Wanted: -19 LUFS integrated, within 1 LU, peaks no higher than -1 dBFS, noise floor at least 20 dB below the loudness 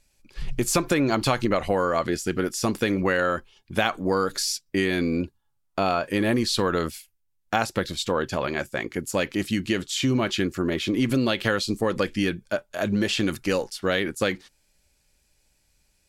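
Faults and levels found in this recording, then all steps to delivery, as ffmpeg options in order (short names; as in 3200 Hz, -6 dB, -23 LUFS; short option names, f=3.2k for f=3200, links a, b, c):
loudness -25.0 LUFS; peak -6.0 dBFS; loudness target -19.0 LUFS
-> -af "volume=6dB,alimiter=limit=-1dB:level=0:latency=1"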